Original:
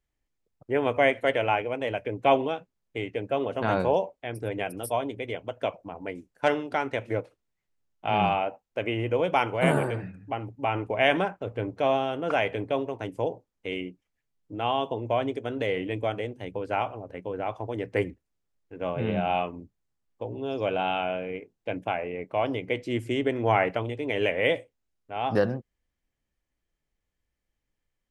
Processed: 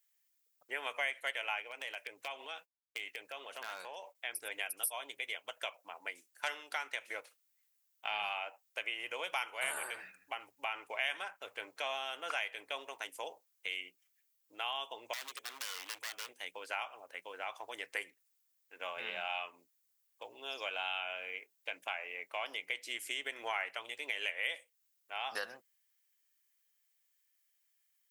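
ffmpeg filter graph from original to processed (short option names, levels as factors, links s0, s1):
-filter_complex "[0:a]asettb=1/sr,asplit=3[s0][s1][s2];[s0]atrim=end=1.714[s3];[s1]atrim=start=1.71:end=4.15,asetpts=PTS-STARTPTS,afade=t=in:d=0.004:c=qsin,afade=t=out:st=2.436:d=0.004:c=qsin,agate=range=0.0224:threshold=0.00501:ratio=3:release=100:detection=peak,acompressor=threshold=0.0282:ratio=6:attack=3.2:release=140:knee=1:detection=peak,volume=17.8,asoftclip=hard,volume=0.0562[s4];[s2]atrim=start=4.146[s5];[s3][s4]acrossfade=d=0.004:c1=hsin:c2=qsin[s6];[s6][s5]acrossfade=d=0.004:c1=qsin:c2=hsin,asettb=1/sr,asplit=3[s7][s8][s9];[s7]atrim=end=15.134[s10];[s8]atrim=start=15.13:end=16.29,asetpts=PTS-STARTPTS,afade=t=in:d=0.004:c=qsin,afade=t=out:st=1.156:d=0.004:c=qsin,acrossover=split=810|2400[s11][s12][s13];[s11]acompressor=threshold=0.02:ratio=4[s14];[s12]acompressor=threshold=0.00447:ratio=4[s15];[s13]acompressor=threshold=0.00562:ratio=4[s16];[s14][s15][s16]amix=inputs=3:normalize=0,aeval=exprs='0.0178*(abs(mod(val(0)/0.0178+3,4)-2)-1)':c=same[s17];[s9]atrim=start=16.286[s18];[s10][s17]acrossfade=d=0.004:c1=hsin:c2=qsin[s19];[s19][s18]acrossfade=d=0.004:c1=qsin:c2=hsin,highpass=1400,aemphasis=mode=production:type=50fm,acompressor=threshold=0.0112:ratio=2.5,volume=1.26"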